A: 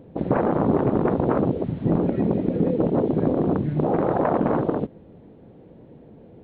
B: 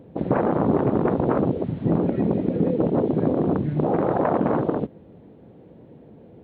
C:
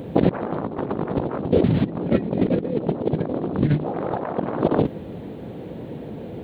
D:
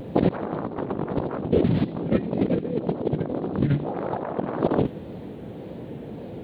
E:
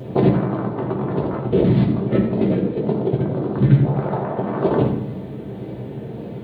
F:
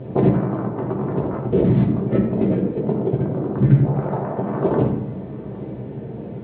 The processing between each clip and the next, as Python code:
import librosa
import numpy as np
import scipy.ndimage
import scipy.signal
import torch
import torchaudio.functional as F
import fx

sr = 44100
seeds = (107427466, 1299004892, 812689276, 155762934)

y1 = scipy.signal.sosfilt(scipy.signal.butter(2, 58.0, 'highpass', fs=sr, output='sos'), x)
y2 = fx.high_shelf(y1, sr, hz=2400.0, db=10.0)
y2 = fx.over_compress(y2, sr, threshold_db=-27.0, ratio=-0.5)
y2 = y2 * librosa.db_to_amplitude(6.0)
y3 = fx.vibrato(y2, sr, rate_hz=1.8, depth_cents=73.0)
y3 = fx.echo_wet_highpass(y3, sr, ms=82, feedback_pct=57, hz=2600.0, wet_db=-13)
y3 = y3 * librosa.db_to_amplitude(-2.5)
y4 = scipy.signal.sosfilt(scipy.signal.butter(2, 64.0, 'highpass', fs=sr, output='sos'), y3)
y4 = fx.rev_fdn(y4, sr, rt60_s=0.78, lf_ratio=1.55, hf_ratio=0.7, size_ms=46.0, drr_db=-1.5)
y5 = fx.air_absorb(y4, sr, metres=400.0)
y5 = y5 + 10.0 ** (-21.0 / 20.0) * np.pad(y5, (int(811 * sr / 1000.0), 0))[:len(y5)]